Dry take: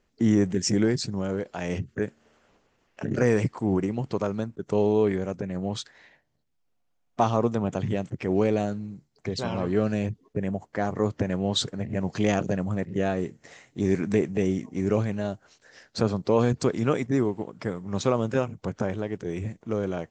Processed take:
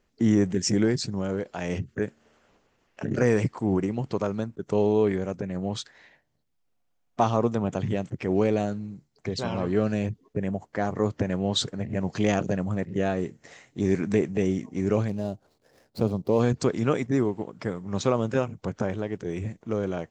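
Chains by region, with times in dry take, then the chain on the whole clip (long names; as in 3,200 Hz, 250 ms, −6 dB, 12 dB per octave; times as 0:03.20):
0:15.08–0:16.40: running median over 15 samples + parametric band 1,600 Hz −11.5 dB 1.1 octaves
whole clip: no processing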